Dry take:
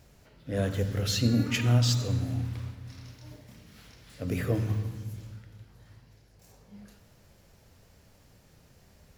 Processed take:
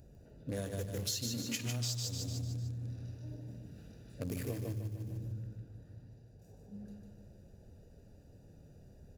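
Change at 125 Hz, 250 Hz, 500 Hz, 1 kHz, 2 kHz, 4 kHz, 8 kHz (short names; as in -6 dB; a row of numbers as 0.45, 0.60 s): -10.5, -11.0, -9.0, -13.0, -11.5, -6.5, -2.0 dB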